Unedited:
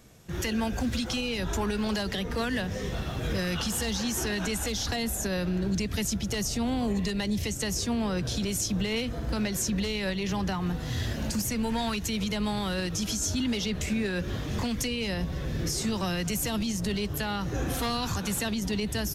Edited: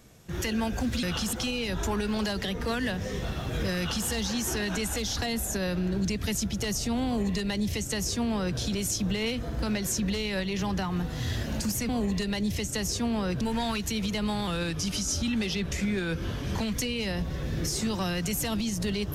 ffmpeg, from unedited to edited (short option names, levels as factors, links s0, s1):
-filter_complex "[0:a]asplit=7[s0][s1][s2][s3][s4][s5][s6];[s0]atrim=end=1.032[s7];[s1]atrim=start=3.468:end=3.772[s8];[s2]atrim=start=1.028:end=11.592[s9];[s3]atrim=start=6.758:end=8.282[s10];[s4]atrim=start=11.588:end=12.654[s11];[s5]atrim=start=12.65:end=14.76,asetpts=PTS-STARTPTS,asetrate=41013,aresample=44100[s12];[s6]atrim=start=14.756[s13];[s7][s8]acrossfade=d=0.004:c1=hsin:c2=hsin[s14];[s14][s9]acrossfade=d=0.004:c1=hsin:c2=hsin[s15];[s15][s10]acrossfade=d=0.004:c1=hsin:c2=hsin[s16];[s16][s11]acrossfade=d=0.004:c1=hsin:c2=hsin[s17];[s17][s12]acrossfade=d=0.004:c1=hsin:c2=hsin[s18];[s18][s13]acrossfade=d=0.004:c1=hsin:c2=hsin"